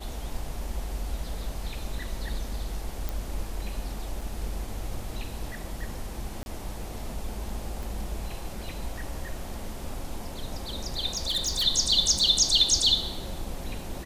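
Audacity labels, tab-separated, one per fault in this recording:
3.090000	3.090000	pop
4.210000	4.210000	gap 3.9 ms
6.430000	6.460000	gap 31 ms
7.830000	7.830000	pop
11.170000	11.640000	clipped -23 dBFS
12.190000	12.190000	gap 3.8 ms

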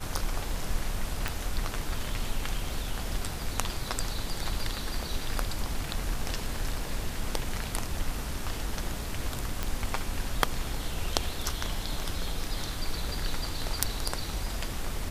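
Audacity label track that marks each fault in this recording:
1.280000	1.280000	pop
9.630000	9.630000	pop -14 dBFS

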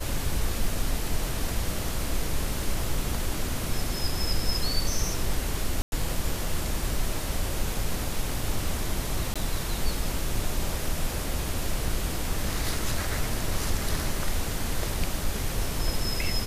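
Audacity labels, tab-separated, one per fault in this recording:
5.820000	5.920000	gap 0.101 s
9.340000	9.360000	gap 16 ms

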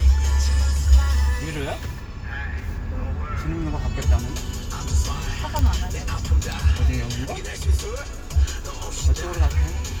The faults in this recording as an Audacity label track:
5.590000	5.590000	pop

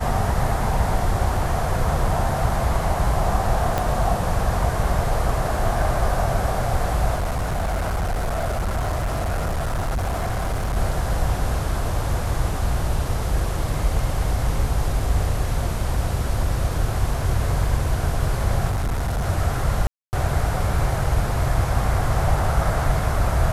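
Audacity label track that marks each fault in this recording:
3.780000	3.780000	pop -8 dBFS
7.150000	10.770000	clipped -20 dBFS
18.690000	19.260000	clipped -19.5 dBFS
19.870000	20.130000	gap 0.259 s

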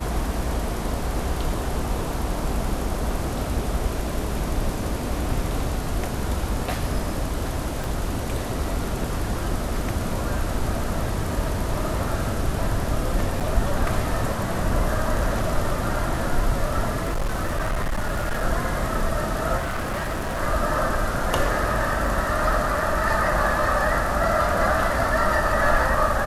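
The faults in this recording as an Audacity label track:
7.840000	7.840000	pop
13.400000	13.410000	gap 7.3 ms
17.030000	18.440000	clipped -20.5 dBFS
19.570000	20.410000	clipped -23.5 dBFS
22.080000	22.080000	gap 2.2 ms

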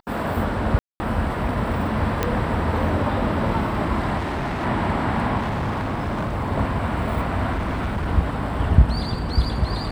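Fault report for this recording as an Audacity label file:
0.790000	1.000000	gap 0.21 s
2.230000	2.230000	pop -7 dBFS
4.170000	4.650000	clipped -22.5 dBFS
5.390000	6.380000	clipped -21 dBFS
7.520000	8.070000	clipped -20.5 dBFS

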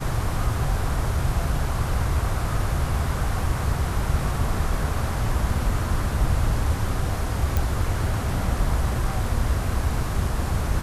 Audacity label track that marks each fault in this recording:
7.570000	7.570000	pop

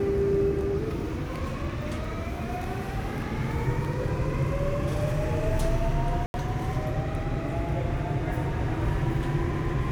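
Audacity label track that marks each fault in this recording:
6.260000	6.340000	gap 81 ms

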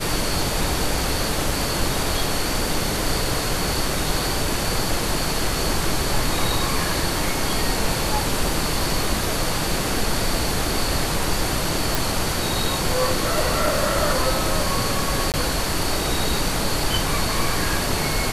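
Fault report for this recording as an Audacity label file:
11.950000	11.950000	pop
15.320000	15.340000	gap 18 ms

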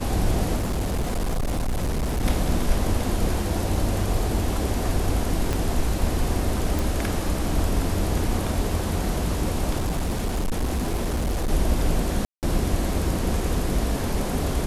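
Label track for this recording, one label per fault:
0.560000	2.250000	clipped -21 dBFS
5.530000	5.530000	pop -11 dBFS
6.790000	6.790000	pop
9.770000	11.510000	clipped -20.5 dBFS
12.250000	12.430000	gap 0.178 s

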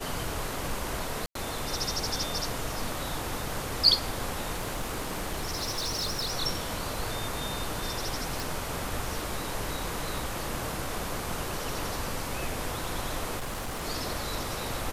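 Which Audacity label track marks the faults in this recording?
1.260000	1.350000	gap 93 ms
4.560000	6.330000	clipped -27 dBFS
8.400000	8.400000	pop
13.390000	13.840000	clipped -30.5 dBFS

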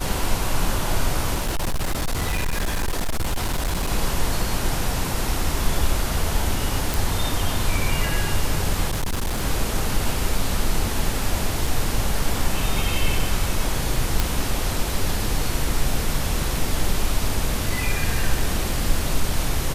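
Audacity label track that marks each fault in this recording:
1.350000	3.910000	clipped -19 dBFS
6.940000	6.940000	pop
8.910000	9.430000	clipped -20 dBFS
11.670000	11.670000	gap 3.2 ms
14.200000	14.200000	pop

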